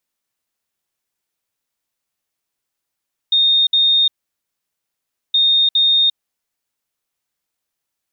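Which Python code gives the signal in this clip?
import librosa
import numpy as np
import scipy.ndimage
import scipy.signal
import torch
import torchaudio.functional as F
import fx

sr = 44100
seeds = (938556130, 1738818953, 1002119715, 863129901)

y = fx.beep_pattern(sr, wave='sine', hz=3680.0, on_s=0.35, off_s=0.06, beeps=2, pause_s=1.26, groups=2, level_db=-10.5)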